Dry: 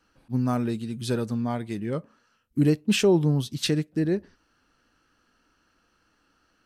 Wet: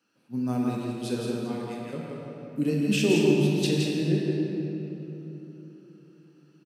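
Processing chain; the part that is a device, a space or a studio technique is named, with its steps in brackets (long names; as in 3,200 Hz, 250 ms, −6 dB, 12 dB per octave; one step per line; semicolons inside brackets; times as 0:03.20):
0:01.35–0:01.93: high-pass filter 680 Hz 24 dB per octave
stadium PA (high-pass filter 150 Hz 24 dB per octave; parametric band 2,600 Hz +7 dB 0.23 octaves; loudspeakers that aren't time-aligned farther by 58 metres −5 dB, 69 metres −12 dB; convolution reverb RT60 3.7 s, pre-delay 15 ms, DRR −1.5 dB)
parametric band 1,300 Hz −6 dB 2.3 octaves
level −4.5 dB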